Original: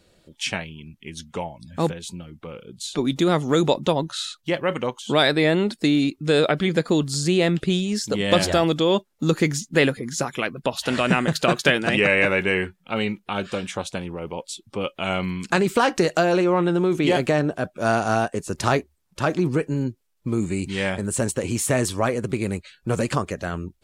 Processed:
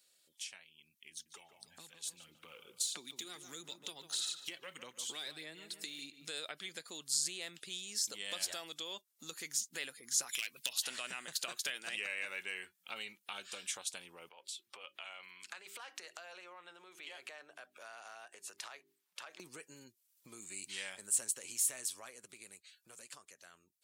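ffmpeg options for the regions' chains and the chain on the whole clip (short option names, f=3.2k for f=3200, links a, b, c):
-filter_complex "[0:a]asettb=1/sr,asplit=3[a][b][c];[a]atrim=end=1.114[d];[b]atrim=start=1.11:end=6.28,asetpts=PTS-STARTPTS,afade=t=in:d=0.004:c=qsin,afade=t=out:st=5.166:d=0.004:c=qsin,acrossover=split=360|1400[e][f][g];[e]acompressor=threshold=-24dB:ratio=4[h];[f]acompressor=threshold=-36dB:ratio=4[i];[g]acompressor=threshold=-34dB:ratio=4[j];[h][i][j]amix=inputs=3:normalize=0,aphaser=in_gain=1:out_gain=1:delay=2.7:decay=0.43:speed=1.6:type=sinusoidal,asplit=2[k][l];[l]adelay=147,lowpass=f=2.2k:p=1,volume=-11dB,asplit=2[m][n];[n]adelay=147,lowpass=f=2.2k:p=1,volume=0.4,asplit=2[o][p];[p]adelay=147,lowpass=f=2.2k:p=1,volume=0.4,asplit=2[q][r];[r]adelay=147,lowpass=f=2.2k:p=1,volume=0.4[s];[k][m][o][q][s]amix=inputs=5:normalize=0,atrim=end_sample=227997[t];[c]atrim=start=6.276[u];[d][t]acrossfade=d=0.004:c1=hsin:c2=qsin[v];[v][u]acrossfade=d=0.004:c1=qsin:c2=hsin,asettb=1/sr,asplit=3[w][x][y];[w]atrim=end=10.294[z];[x]atrim=start=10.29:end=10.73,asetpts=PTS-STARTPTS,afade=t=in:d=0.004:c=qsin,afade=t=out:st=0.436:d=0.004:c=qsin,highshelf=f=1.7k:t=q:w=1.5:g=10.5,acompressor=threshold=-22dB:ratio=2.5:attack=3.2:release=140:knee=1:detection=peak,aeval=exprs='clip(val(0),-1,0.15)':c=same[aa];[y]atrim=start=10.726[ab];[z][aa]acrossfade=d=0.004:c1=hsin:c2=qsin[ac];[ac][ab]acrossfade=d=0.004:c1=qsin:c2=hsin,asettb=1/sr,asplit=3[ad][ae][af];[ad]atrim=end=14.294[ag];[ae]atrim=start=14.29:end=19.4,asetpts=PTS-STARTPTS,afade=t=in:d=0.004:c=qsin,afade=t=out:st=5.106:d=0.004:c=qsin,bandreject=f=50:t=h:w=6,bandreject=f=100:t=h:w=6,bandreject=f=150:t=h:w=6,bandreject=f=200:t=h:w=6,bandreject=f=250:t=h:w=6,bandreject=f=300:t=h:w=6,bandreject=f=350:t=h:w=6,bandreject=f=400:t=h:w=6,acompressor=threshold=-37dB:ratio=4:attack=3.2:release=140:knee=1:detection=peak,acrossover=split=430 3600:gain=0.2 1 0.224[ah][ai][aj];[ah][ai][aj]amix=inputs=3:normalize=0[ak];[af]atrim=start=19.396[al];[ag][ak]acrossfade=d=0.004:c1=hsin:c2=qsin[am];[am][al]acrossfade=d=0.004:c1=qsin:c2=hsin,acompressor=threshold=-38dB:ratio=3,aderivative,dynaudnorm=f=210:g=21:m=10.5dB,volume=-3dB"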